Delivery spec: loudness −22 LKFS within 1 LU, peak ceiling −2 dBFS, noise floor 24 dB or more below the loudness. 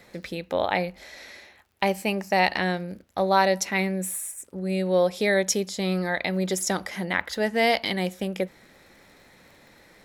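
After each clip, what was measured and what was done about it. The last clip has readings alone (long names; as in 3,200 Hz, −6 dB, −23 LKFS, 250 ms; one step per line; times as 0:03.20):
crackle rate 37 per second; integrated loudness −25.5 LKFS; sample peak −6.5 dBFS; target loudness −22.0 LKFS
→ click removal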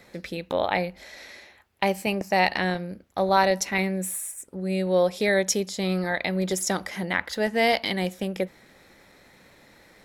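crackle rate 0.60 per second; integrated loudness −25.5 LKFS; sample peak −6.5 dBFS; target loudness −22.0 LKFS
→ level +3.5 dB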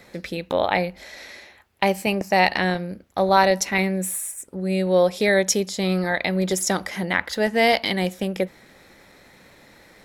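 integrated loudness −22.0 LKFS; sample peak −3.0 dBFS; background noise floor −52 dBFS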